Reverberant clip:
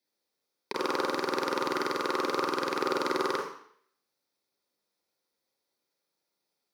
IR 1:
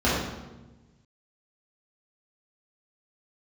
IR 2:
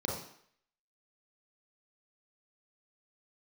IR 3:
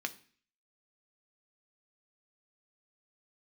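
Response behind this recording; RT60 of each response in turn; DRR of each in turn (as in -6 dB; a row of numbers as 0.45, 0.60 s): 2; 1.1, 0.60, 0.45 s; -9.5, -2.5, 7.0 dB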